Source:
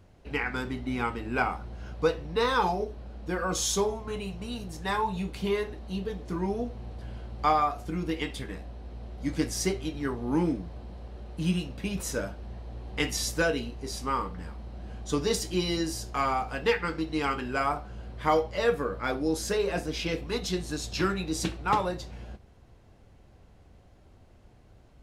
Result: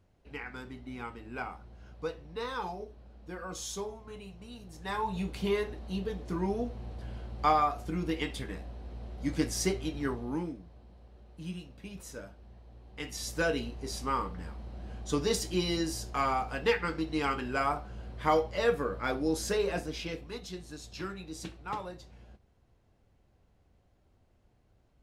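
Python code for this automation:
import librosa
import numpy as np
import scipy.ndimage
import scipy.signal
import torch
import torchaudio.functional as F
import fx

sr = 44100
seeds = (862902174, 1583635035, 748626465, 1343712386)

y = fx.gain(x, sr, db=fx.line((4.6, -11.0), (5.21, -1.5), (10.12, -1.5), (10.54, -12.5), (12.97, -12.5), (13.52, -2.0), (19.66, -2.0), (20.46, -11.5)))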